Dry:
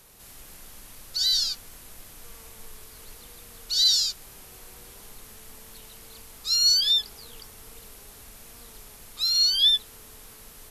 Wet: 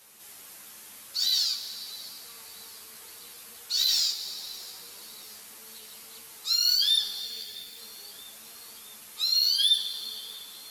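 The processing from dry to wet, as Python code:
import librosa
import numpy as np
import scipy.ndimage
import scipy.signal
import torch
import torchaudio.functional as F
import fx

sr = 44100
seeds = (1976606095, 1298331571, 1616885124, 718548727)

y = fx.lower_of_two(x, sr, delay_ms=0.43, at=(7.21, 7.78))
y = scipy.signal.sosfilt(scipy.signal.butter(2, 150.0, 'highpass', fs=sr, output='sos'), y)
y = fx.tilt_shelf(y, sr, db=-4.0, hz=740.0)
y = 10.0 ** (-18.0 / 20.0) * np.tanh(y / 10.0 ** (-18.0 / 20.0))
y = fx.echo_feedback(y, sr, ms=649, feedback_pct=57, wet_db=-21)
y = fx.rev_plate(y, sr, seeds[0], rt60_s=2.9, hf_ratio=0.95, predelay_ms=0, drr_db=8.5)
y = fx.ensemble(y, sr)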